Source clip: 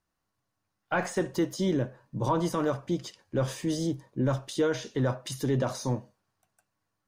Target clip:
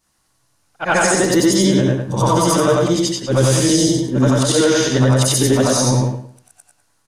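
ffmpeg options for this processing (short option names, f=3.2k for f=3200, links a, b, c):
-filter_complex "[0:a]afftfilt=real='re':imag='-im':win_size=8192:overlap=0.75,lowpass=f=11k:w=0.5412,lowpass=f=11k:w=1.3066,aemphasis=mode=production:type=75kf,acontrast=32,asplit=2[a][b];[b]adelay=108,lowpass=f=3.5k:p=1,volume=-3.5dB,asplit=2[c][d];[d]adelay=108,lowpass=f=3.5k:p=1,volume=0.26,asplit=2[e][f];[f]adelay=108,lowpass=f=3.5k:p=1,volume=0.26,asplit=2[g][h];[h]adelay=108,lowpass=f=3.5k:p=1,volume=0.26[i];[a][c][e][g][i]amix=inputs=5:normalize=0,alimiter=level_in=16dB:limit=-1dB:release=50:level=0:latency=1,volume=-4dB"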